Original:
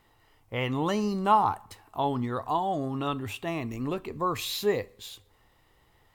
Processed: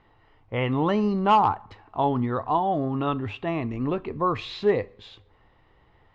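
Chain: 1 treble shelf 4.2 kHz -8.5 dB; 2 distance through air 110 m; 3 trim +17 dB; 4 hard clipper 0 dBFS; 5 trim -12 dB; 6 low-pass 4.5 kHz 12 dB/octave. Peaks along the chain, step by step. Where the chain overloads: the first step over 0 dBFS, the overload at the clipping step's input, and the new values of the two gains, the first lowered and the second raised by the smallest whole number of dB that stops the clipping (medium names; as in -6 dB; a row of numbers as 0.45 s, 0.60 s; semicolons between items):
-11.0 dBFS, -11.5 dBFS, +5.5 dBFS, 0.0 dBFS, -12.0 dBFS, -11.5 dBFS; step 3, 5.5 dB; step 3 +11 dB, step 5 -6 dB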